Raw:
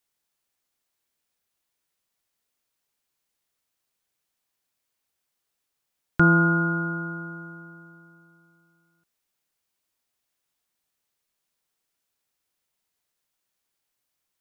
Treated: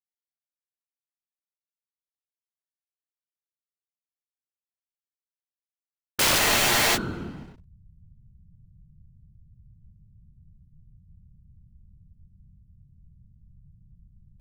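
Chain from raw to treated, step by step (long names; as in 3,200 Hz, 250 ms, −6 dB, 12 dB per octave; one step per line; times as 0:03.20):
slack as between gear wheels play −29.5 dBFS
random phases in short frames
wrap-around overflow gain 19 dB
frozen spectrum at 0:06.41, 0.55 s
level +3 dB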